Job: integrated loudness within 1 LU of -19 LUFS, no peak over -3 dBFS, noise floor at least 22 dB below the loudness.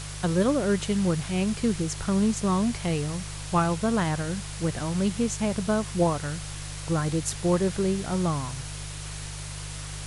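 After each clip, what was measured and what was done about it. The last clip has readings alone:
hum 50 Hz; highest harmonic 150 Hz; hum level -35 dBFS; noise floor -37 dBFS; noise floor target -49 dBFS; loudness -27.0 LUFS; peak level -11.5 dBFS; loudness target -19.0 LUFS
-> de-hum 50 Hz, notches 3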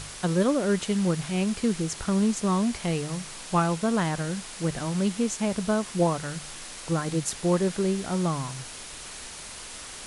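hum not found; noise floor -41 dBFS; noise floor target -49 dBFS
-> noise print and reduce 8 dB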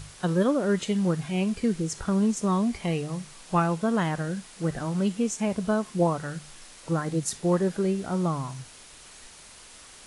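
noise floor -49 dBFS; loudness -27.0 LUFS; peak level -11.5 dBFS; loudness target -19.0 LUFS
-> trim +8 dB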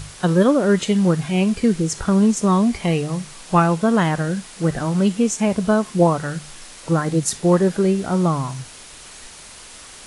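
loudness -19.0 LUFS; peak level -3.5 dBFS; noise floor -41 dBFS

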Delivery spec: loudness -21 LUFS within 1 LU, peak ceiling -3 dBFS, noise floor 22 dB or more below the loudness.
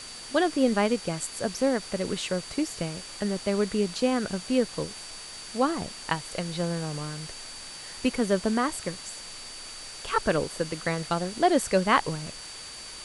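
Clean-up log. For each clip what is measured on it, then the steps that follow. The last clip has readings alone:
steady tone 4.6 kHz; tone level -43 dBFS; noise floor -42 dBFS; noise floor target -50 dBFS; loudness -28.0 LUFS; peak level -8.0 dBFS; loudness target -21.0 LUFS
-> band-stop 4.6 kHz, Q 30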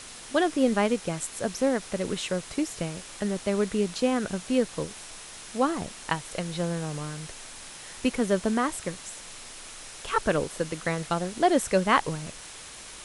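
steady tone not found; noise floor -44 dBFS; noise floor target -50 dBFS
-> noise reduction 6 dB, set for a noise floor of -44 dBFS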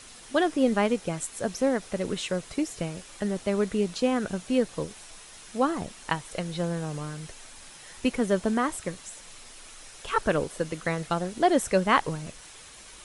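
noise floor -48 dBFS; noise floor target -50 dBFS
-> noise reduction 6 dB, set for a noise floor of -48 dBFS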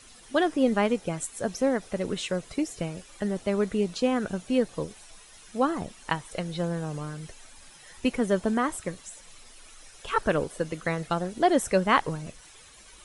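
noise floor -51 dBFS; loudness -28.0 LUFS; peak level -8.0 dBFS; loudness target -21.0 LUFS
-> trim +7 dB; peak limiter -3 dBFS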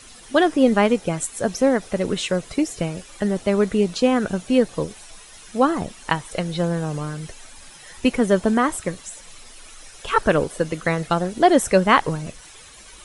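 loudness -21.0 LUFS; peak level -3.0 dBFS; noise floor -44 dBFS

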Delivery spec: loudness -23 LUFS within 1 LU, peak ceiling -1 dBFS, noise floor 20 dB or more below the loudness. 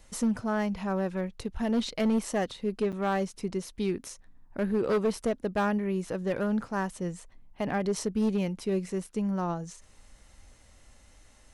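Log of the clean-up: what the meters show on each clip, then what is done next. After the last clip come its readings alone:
clipped samples 1.1%; clipping level -21.0 dBFS; dropouts 1; longest dropout 7.6 ms; loudness -30.5 LUFS; peak level -21.0 dBFS; loudness target -23.0 LUFS
-> clip repair -21 dBFS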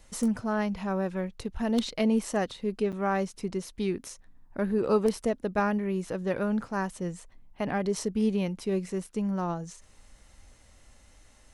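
clipped samples 0.0%; dropouts 1; longest dropout 7.6 ms
-> interpolate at 2.92 s, 7.6 ms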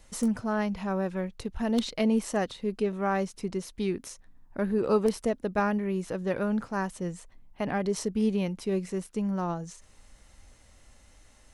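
dropouts 0; loudness -30.0 LUFS; peak level -12.0 dBFS; loudness target -23.0 LUFS
-> trim +7 dB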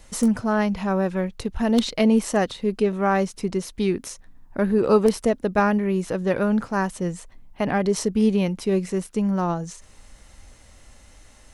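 loudness -23.0 LUFS; peak level -5.0 dBFS; noise floor -51 dBFS

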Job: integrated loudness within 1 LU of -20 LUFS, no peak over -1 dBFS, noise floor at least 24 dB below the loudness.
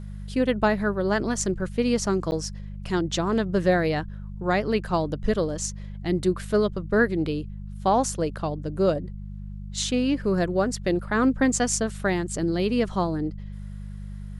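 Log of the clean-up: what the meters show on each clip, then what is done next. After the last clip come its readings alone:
dropouts 1; longest dropout 9.9 ms; hum 50 Hz; highest harmonic 200 Hz; hum level -33 dBFS; loudness -25.0 LUFS; peak level -9.0 dBFS; loudness target -20.0 LUFS
-> interpolate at 2.31 s, 9.9 ms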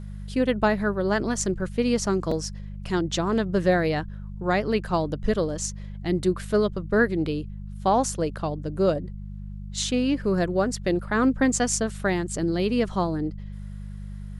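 dropouts 0; hum 50 Hz; highest harmonic 200 Hz; hum level -33 dBFS
-> de-hum 50 Hz, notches 4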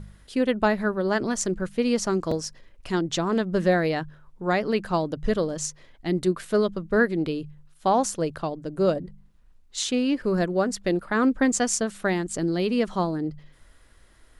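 hum not found; loudness -25.5 LUFS; peak level -8.5 dBFS; loudness target -20.0 LUFS
-> trim +5.5 dB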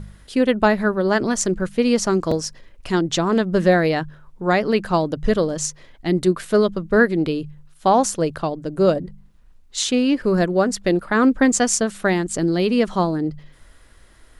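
loudness -20.0 LUFS; peak level -3.0 dBFS; noise floor -50 dBFS

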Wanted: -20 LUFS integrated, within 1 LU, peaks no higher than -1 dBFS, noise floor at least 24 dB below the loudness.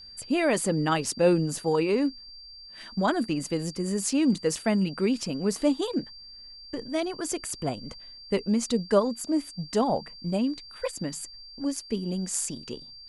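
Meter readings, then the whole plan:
steady tone 4.7 kHz; tone level -44 dBFS; loudness -27.5 LUFS; peak level -9.0 dBFS; loudness target -20.0 LUFS
-> band-stop 4.7 kHz, Q 30; trim +7.5 dB

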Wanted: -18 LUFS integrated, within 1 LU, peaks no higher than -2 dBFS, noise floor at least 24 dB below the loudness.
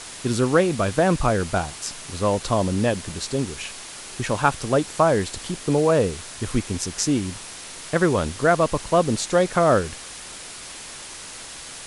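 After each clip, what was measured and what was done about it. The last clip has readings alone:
noise floor -38 dBFS; noise floor target -47 dBFS; loudness -22.5 LUFS; peak level -3.0 dBFS; loudness target -18.0 LUFS
-> noise print and reduce 9 dB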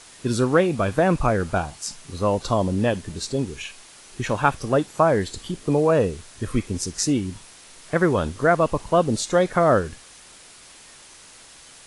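noise floor -47 dBFS; loudness -22.5 LUFS; peak level -3.0 dBFS; loudness target -18.0 LUFS
-> trim +4.5 dB; peak limiter -2 dBFS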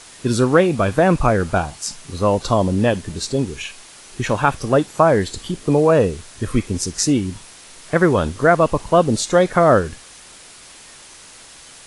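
loudness -18.0 LUFS; peak level -2.0 dBFS; noise floor -43 dBFS

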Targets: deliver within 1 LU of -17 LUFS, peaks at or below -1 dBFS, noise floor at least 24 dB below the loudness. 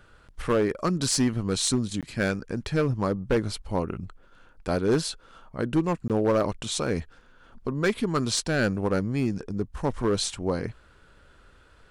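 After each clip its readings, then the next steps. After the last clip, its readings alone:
clipped samples 1.0%; clipping level -16.5 dBFS; dropouts 2; longest dropout 17 ms; loudness -27.0 LUFS; peak level -16.5 dBFS; loudness target -17.0 LUFS
-> clip repair -16.5 dBFS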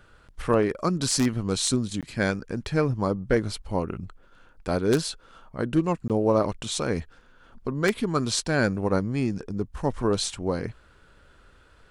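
clipped samples 0.0%; dropouts 2; longest dropout 17 ms
-> interpolate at 2.01/6.08 s, 17 ms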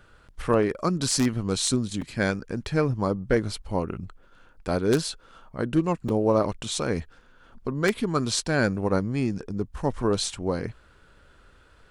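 dropouts 0; loudness -26.5 LUFS; peak level -7.5 dBFS; loudness target -17.0 LUFS
-> trim +9.5 dB; peak limiter -1 dBFS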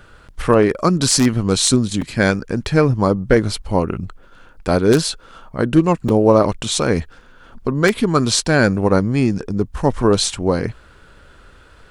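loudness -17.0 LUFS; peak level -1.0 dBFS; noise floor -47 dBFS

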